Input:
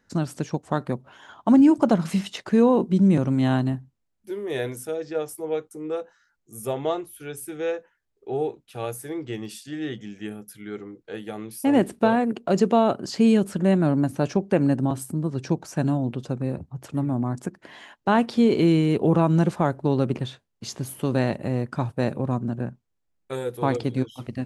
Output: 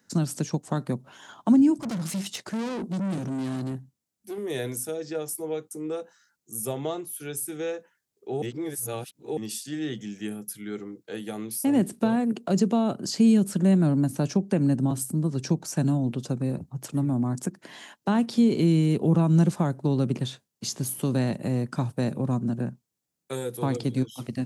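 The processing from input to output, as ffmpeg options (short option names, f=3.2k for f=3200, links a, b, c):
-filter_complex "[0:a]asettb=1/sr,asplit=3[a][b][c];[a]atrim=end=1.804[d];[b]atrim=start=1.8:end=4.38,asetpts=PTS-STARTPTS,afade=t=in:d=0.004:c=qsin,afade=t=out:st=2.576:d=0.004:c=qsin,aeval=exprs='(tanh(25.1*val(0)+0.45)-tanh(0.45))/25.1':c=same[e];[c]atrim=start=4.376[f];[d][e]acrossfade=d=0.004:c1=hsin:c2=qsin[g];[g][f]acrossfade=d=0.004:c1=qsin:c2=hsin,asplit=3[h][i][j];[h]atrim=end=8.422[k];[i]atrim=start=8.418:end=9.372,asetpts=PTS-STARTPTS,areverse[l];[j]atrim=start=9.368[m];[k][l]acrossfade=d=0.004:c1=hsin:c2=hsin[n];[n][m]acrossfade=d=0.004:c1=hsin:c2=hsin,highpass=170,bass=f=250:g=8,treble=f=4k:g=11,acrossover=split=240[o][p];[p]acompressor=threshold=-29dB:ratio=2[q];[o][q]amix=inputs=2:normalize=0,volume=-1.5dB"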